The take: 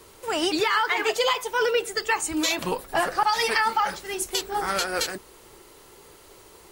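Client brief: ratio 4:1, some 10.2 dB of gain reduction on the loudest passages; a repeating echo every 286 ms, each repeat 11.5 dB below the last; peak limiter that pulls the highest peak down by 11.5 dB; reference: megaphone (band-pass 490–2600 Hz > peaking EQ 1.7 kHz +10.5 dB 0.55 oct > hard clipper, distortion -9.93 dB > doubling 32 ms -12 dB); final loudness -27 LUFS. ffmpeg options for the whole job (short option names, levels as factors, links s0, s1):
-filter_complex "[0:a]acompressor=threshold=0.0282:ratio=4,alimiter=level_in=1.88:limit=0.0631:level=0:latency=1,volume=0.531,highpass=490,lowpass=2600,equalizer=f=1700:t=o:w=0.55:g=10.5,aecho=1:1:286|572|858:0.266|0.0718|0.0194,asoftclip=type=hard:threshold=0.0188,asplit=2[s0][s1];[s1]adelay=32,volume=0.251[s2];[s0][s2]amix=inputs=2:normalize=0,volume=3.76"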